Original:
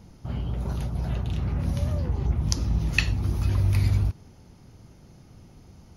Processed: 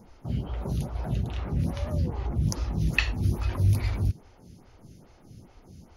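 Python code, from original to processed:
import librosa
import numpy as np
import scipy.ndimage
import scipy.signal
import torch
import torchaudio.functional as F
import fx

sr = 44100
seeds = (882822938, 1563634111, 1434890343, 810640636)

p1 = np.clip(x, -10.0 ** (-18.5 / 20.0), 10.0 ** (-18.5 / 20.0))
p2 = x + F.gain(torch.from_numpy(p1), -7.0).numpy()
y = fx.stagger_phaser(p2, sr, hz=2.4)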